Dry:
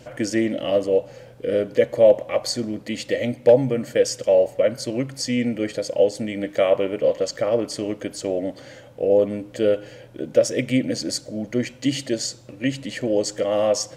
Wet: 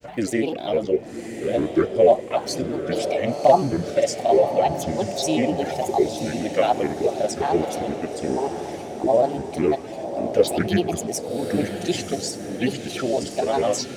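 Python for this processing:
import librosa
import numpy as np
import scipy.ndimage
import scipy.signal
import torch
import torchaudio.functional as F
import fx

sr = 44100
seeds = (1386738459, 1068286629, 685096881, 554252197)

y = fx.granulator(x, sr, seeds[0], grain_ms=100.0, per_s=20.0, spray_ms=28.0, spread_st=7)
y = fx.echo_diffused(y, sr, ms=1062, feedback_pct=46, wet_db=-8.0)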